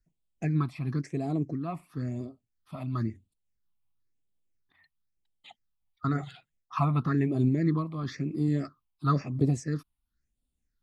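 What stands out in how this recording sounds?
phasing stages 6, 0.98 Hz, lowest notch 430–1700 Hz; noise-modulated level

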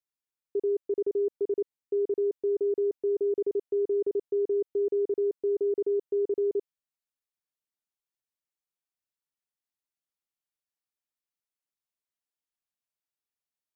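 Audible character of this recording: noise floor -94 dBFS; spectral tilt +20.0 dB/oct

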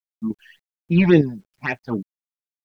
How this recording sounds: phasing stages 8, 3.6 Hz, lowest notch 360–1400 Hz; random-step tremolo 3.3 Hz, depth 70%; a quantiser's noise floor 12-bit, dither none

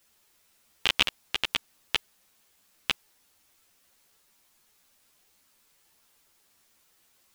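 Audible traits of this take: tremolo saw up 0.96 Hz, depth 50%; a quantiser's noise floor 12-bit, dither triangular; a shimmering, thickened sound

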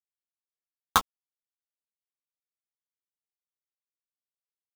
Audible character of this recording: a quantiser's noise floor 6-bit, dither none; tremolo triangle 8 Hz, depth 85%; aliases and images of a low sample rate 2300 Hz, jitter 20%; a shimmering, thickened sound

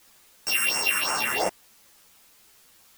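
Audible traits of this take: a buzz of ramps at a fixed pitch in blocks of 16 samples; phasing stages 4, 2.9 Hz, lowest notch 660–3800 Hz; a quantiser's noise floor 10-bit, dither triangular; a shimmering, thickened sound

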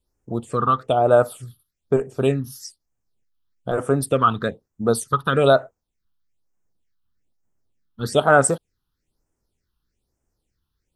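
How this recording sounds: phasing stages 6, 1.1 Hz, lowest notch 550–4000 Hz

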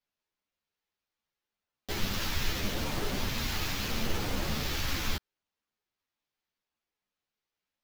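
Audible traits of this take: phasing stages 2, 0.76 Hz, lowest notch 610–2300 Hz; aliases and images of a low sample rate 9200 Hz, jitter 0%; a shimmering, thickened sound

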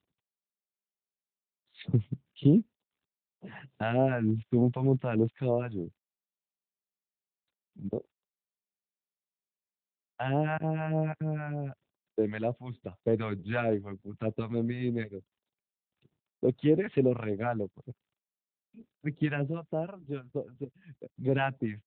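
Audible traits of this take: phasing stages 2, 3.3 Hz, lowest notch 330–1900 Hz; AMR-NB

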